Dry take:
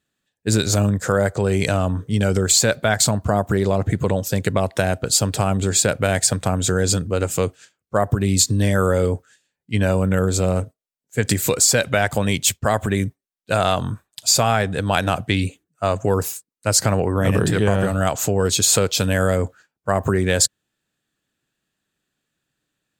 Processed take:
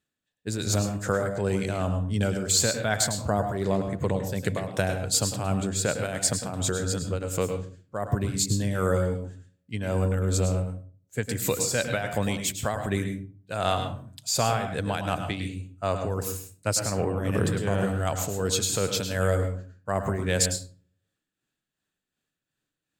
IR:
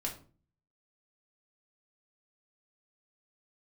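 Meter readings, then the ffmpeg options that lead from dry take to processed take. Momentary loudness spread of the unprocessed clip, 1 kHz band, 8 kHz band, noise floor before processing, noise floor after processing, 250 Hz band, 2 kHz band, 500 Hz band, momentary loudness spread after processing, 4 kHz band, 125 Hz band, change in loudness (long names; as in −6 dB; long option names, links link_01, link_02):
8 LU, −7.5 dB, −8.0 dB, −83 dBFS, below −85 dBFS, −7.5 dB, −8.0 dB, −7.5 dB, 9 LU, −8.0 dB, −7.0 dB, −7.5 dB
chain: -filter_complex "[0:a]tremolo=f=2.7:d=0.59,asplit=2[link_01][link_02];[1:a]atrim=start_sample=2205,adelay=104[link_03];[link_02][link_03]afir=irnorm=-1:irlink=0,volume=-8dB[link_04];[link_01][link_04]amix=inputs=2:normalize=0,volume=-6dB"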